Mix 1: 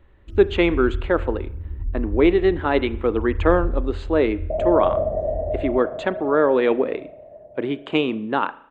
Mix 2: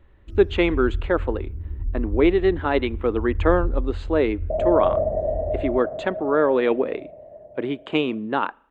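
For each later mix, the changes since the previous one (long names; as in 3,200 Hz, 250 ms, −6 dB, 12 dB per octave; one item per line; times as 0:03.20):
speech: send −11.5 dB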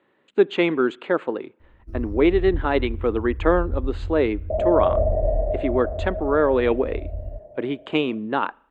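first sound: entry +1.60 s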